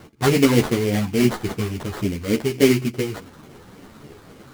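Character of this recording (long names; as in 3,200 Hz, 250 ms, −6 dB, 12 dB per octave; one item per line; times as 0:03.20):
phaser sweep stages 12, 3.5 Hz, lowest notch 550–1,400 Hz
aliases and images of a low sample rate 2,600 Hz, jitter 20%
a shimmering, thickened sound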